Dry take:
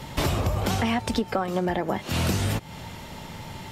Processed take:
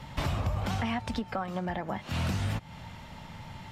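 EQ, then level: LPF 2800 Hz 6 dB/oct; bell 390 Hz -9.5 dB 1 oct; -4.0 dB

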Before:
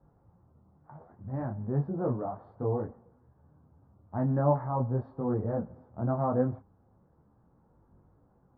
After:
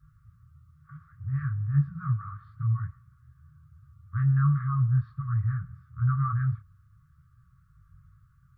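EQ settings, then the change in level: brick-wall FIR band-stop 160–1100 Hz; +8.5 dB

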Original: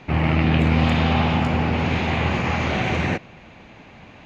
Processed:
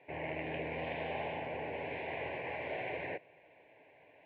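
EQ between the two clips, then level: speaker cabinet 340–2100 Hz, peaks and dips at 350 Hz -8 dB, 510 Hz -4 dB, 780 Hz -7 dB, 1300 Hz -9 dB; fixed phaser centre 520 Hz, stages 4; -5.5 dB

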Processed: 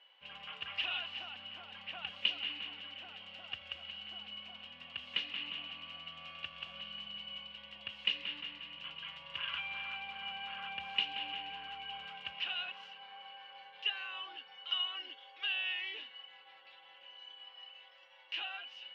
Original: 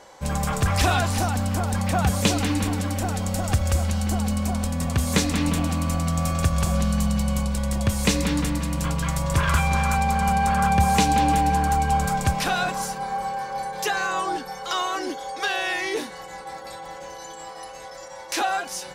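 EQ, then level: band-pass 2900 Hz, Q 16; air absorption 340 m; +10.0 dB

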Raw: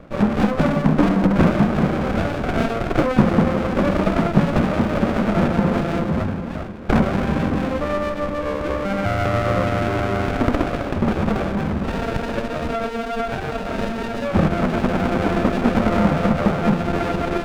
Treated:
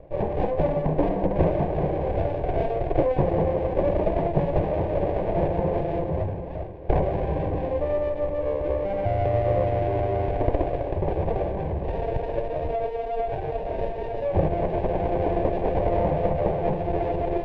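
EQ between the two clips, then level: LPF 1500 Hz 12 dB/oct; fixed phaser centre 550 Hz, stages 4; 0.0 dB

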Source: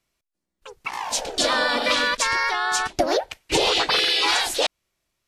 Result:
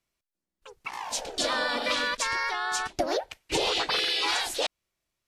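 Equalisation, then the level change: none; -6.5 dB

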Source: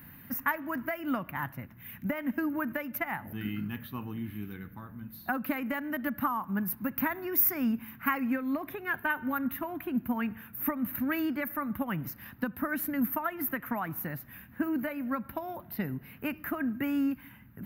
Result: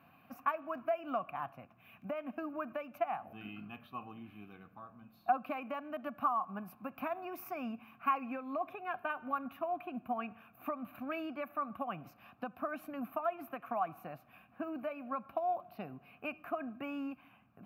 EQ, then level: vowel filter a; tone controls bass +7 dB, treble +4 dB; +7.5 dB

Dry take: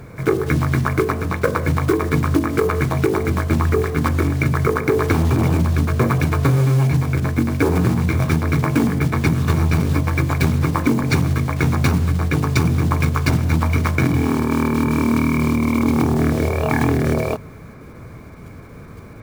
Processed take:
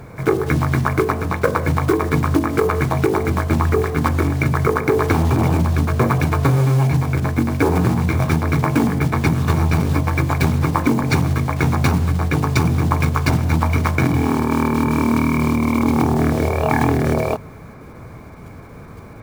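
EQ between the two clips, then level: bell 820 Hz +5.5 dB 0.73 oct; 0.0 dB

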